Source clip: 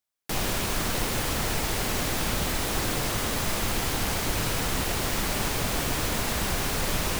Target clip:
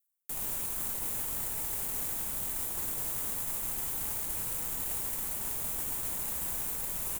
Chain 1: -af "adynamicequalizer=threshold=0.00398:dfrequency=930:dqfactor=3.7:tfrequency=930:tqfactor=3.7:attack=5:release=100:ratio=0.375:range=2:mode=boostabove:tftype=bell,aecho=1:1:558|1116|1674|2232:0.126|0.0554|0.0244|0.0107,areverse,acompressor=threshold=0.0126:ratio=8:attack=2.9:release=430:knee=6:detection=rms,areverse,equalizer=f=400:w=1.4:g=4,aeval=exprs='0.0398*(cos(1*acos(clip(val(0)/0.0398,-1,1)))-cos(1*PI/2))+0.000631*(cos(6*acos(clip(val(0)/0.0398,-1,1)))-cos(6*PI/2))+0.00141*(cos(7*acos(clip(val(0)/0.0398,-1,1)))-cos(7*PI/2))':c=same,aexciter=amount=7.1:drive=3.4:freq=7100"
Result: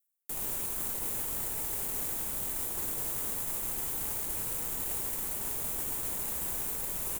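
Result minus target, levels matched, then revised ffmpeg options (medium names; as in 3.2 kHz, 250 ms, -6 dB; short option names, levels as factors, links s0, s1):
500 Hz band +3.0 dB
-af "adynamicequalizer=threshold=0.00398:dfrequency=930:dqfactor=3.7:tfrequency=930:tqfactor=3.7:attack=5:release=100:ratio=0.375:range=2:mode=boostabove:tftype=bell,aecho=1:1:558|1116|1674|2232:0.126|0.0554|0.0244|0.0107,areverse,acompressor=threshold=0.0126:ratio=8:attack=2.9:release=430:knee=6:detection=rms,areverse,aeval=exprs='0.0398*(cos(1*acos(clip(val(0)/0.0398,-1,1)))-cos(1*PI/2))+0.000631*(cos(6*acos(clip(val(0)/0.0398,-1,1)))-cos(6*PI/2))+0.00141*(cos(7*acos(clip(val(0)/0.0398,-1,1)))-cos(7*PI/2))':c=same,aexciter=amount=7.1:drive=3.4:freq=7100"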